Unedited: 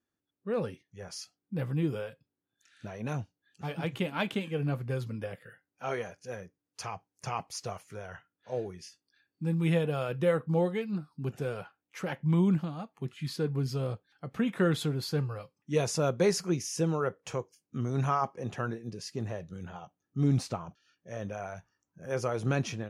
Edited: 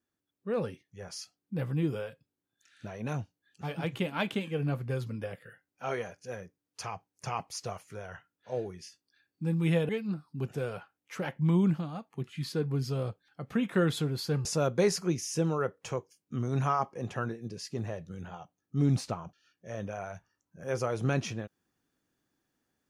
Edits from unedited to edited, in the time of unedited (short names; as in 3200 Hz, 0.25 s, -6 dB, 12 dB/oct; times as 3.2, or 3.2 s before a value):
9.89–10.73 cut
15.29–15.87 cut